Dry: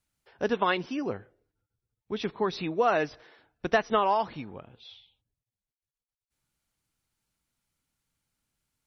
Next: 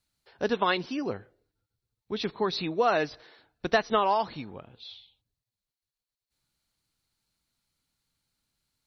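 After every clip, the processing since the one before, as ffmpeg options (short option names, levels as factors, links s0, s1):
-af "equalizer=f=4200:t=o:w=0.36:g=10"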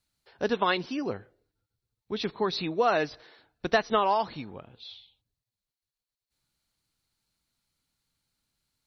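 -af anull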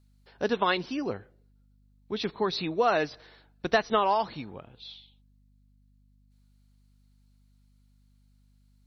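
-af "aeval=exprs='val(0)+0.000891*(sin(2*PI*50*n/s)+sin(2*PI*2*50*n/s)/2+sin(2*PI*3*50*n/s)/3+sin(2*PI*4*50*n/s)/4+sin(2*PI*5*50*n/s)/5)':c=same"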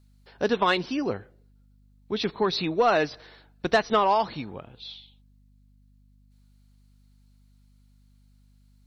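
-af "asoftclip=type=tanh:threshold=0.188,volume=1.58"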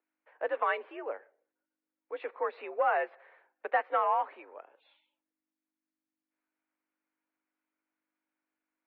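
-af "highpass=f=390:t=q:w=0.5412,highpass=f=390:t=q:w=1.307,lowpass=f=2300:t=q:w=0.5176,lowpass=f=2300:t=q:w=0.7071,lowpass=f=2300:t=q:w=1.932,afreqshift=66,volume=0.501"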